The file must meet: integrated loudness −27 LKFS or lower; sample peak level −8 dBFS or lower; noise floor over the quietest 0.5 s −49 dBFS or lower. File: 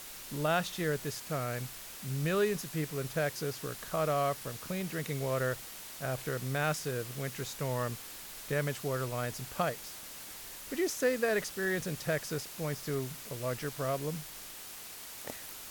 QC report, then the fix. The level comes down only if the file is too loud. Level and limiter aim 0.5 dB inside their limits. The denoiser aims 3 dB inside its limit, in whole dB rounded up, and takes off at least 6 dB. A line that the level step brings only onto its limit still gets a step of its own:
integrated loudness −35.0 LKFS: in spec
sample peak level −18.0 dBFS: in spec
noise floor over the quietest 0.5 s −46 dBFS: out of spec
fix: broadband denoise 6 dB, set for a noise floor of −46 dBFS

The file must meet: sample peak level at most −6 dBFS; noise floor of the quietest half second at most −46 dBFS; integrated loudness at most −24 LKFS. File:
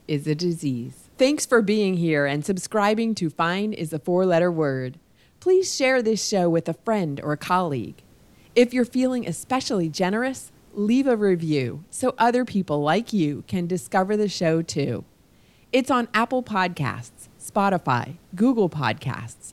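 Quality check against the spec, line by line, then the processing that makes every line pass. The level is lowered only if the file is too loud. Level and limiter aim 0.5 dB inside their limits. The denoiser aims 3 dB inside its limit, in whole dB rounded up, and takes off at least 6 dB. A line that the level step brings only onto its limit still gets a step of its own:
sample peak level −5.5 dBFS: out of spec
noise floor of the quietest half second −56 dBFS: in spec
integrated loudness −23.0 LKFS: out of spec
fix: level −1.5 dB

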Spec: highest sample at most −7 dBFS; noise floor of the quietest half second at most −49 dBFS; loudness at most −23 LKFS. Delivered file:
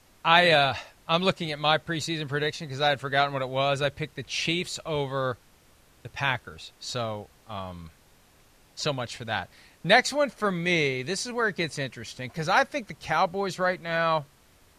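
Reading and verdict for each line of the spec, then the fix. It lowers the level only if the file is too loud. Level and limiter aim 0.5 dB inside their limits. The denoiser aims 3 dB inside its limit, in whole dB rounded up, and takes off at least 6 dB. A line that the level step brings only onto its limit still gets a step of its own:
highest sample −4.0 dBFS: out of spec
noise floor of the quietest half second −59 dBFS: in spec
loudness −26.0 LKFS: in spec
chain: brickwall limiter −7.5 dBFS

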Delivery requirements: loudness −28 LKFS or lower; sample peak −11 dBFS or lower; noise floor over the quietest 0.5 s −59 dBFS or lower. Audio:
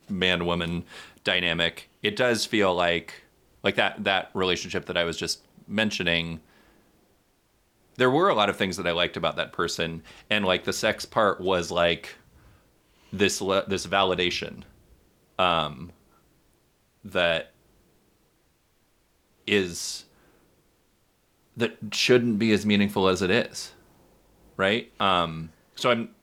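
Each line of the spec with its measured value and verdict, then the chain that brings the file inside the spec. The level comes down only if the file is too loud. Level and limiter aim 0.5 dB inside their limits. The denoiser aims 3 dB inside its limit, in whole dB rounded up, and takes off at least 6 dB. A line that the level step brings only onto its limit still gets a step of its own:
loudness −25.0 LKFS: out of spec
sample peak −6.5 dBFS: out of spec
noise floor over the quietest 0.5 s −66 dBFS: in spec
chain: level −3.5 dB
brickwall limiter −11.5 dBFS

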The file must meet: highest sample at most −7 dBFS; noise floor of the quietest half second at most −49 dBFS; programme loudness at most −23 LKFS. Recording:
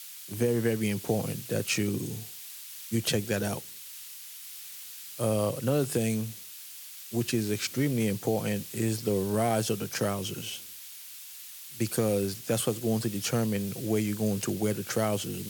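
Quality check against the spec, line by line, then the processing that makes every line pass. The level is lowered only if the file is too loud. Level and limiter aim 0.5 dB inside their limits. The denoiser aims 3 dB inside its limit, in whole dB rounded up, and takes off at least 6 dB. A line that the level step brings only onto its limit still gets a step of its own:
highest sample −14.5 dBFS: in spec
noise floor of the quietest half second −45 dBFS: out of spec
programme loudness −30.0 LKFS: in spec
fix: broadband denoise 7 dB, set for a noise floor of −45 dBFS

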